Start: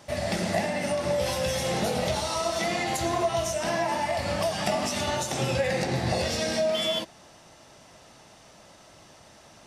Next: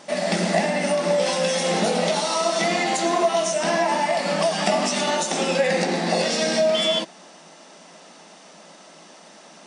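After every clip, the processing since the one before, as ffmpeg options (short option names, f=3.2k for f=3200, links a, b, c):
-af "afftfilt=real='re*between(b*sr/4096,160,10000)':imag='im*between(b*sr/4096,160,10000)':win_size=4096:overlap=0.75,volume=6dB"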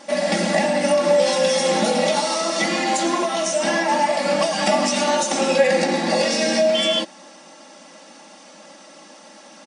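-af "aecho=1:1:3.6:0.82"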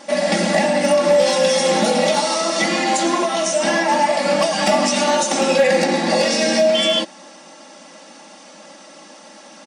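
-af "asoftclip=type=hard:threshold=-10.5dB,volume=2.5dB"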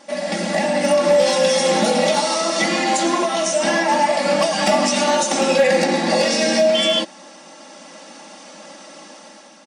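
-af "dynaudnorm=f=250:g=5:m=8dB,volume=-6dB"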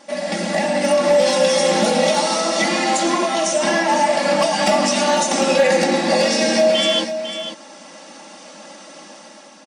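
-af "aecho=1:1:500:0.316"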